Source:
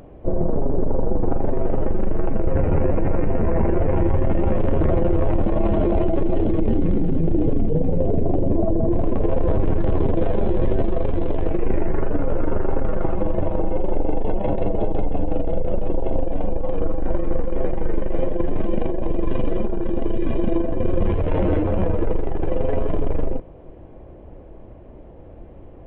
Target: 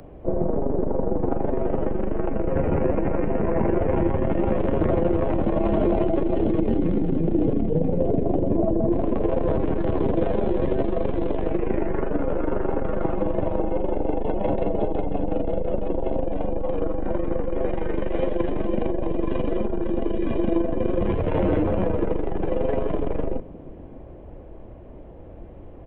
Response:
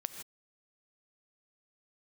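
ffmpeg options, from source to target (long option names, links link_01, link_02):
-filter_complex "[0:a]asettb=1/sr,asplit=3[link_01][link_02][link_03];[link_01]atrim=end=17.684[link_04];[link_02]atrim=start=17.68:end=18.53,asetpts=PTS-STARTPTS,afade=type=in:duration=0.004:curve=qsin,afade=type=out:start_time=0.846:duration=0.004:curve=qsin,highshelf=frequency=2000:gain=8.5[link_05];[link_03]atrim=start=18.526[link_06];[link_04][link_05]acrossfade=duration=0.004:curve1=hsin:curve2=qsin[link_07];[link_07][link_06]acrossfade=duration=0.004:curve1=qsin:curve2=hsin,acrossover=split=150|290|1000[link_08][link_09][link_10][link_11];[link_08]asoftclip=type=tanh:threshold=-23dB[link_12];[link_09]aecho=1:1:605:0.422[link_13];[link_12][link_13][link_10][link_11]amix=inputs=4:normalize=0"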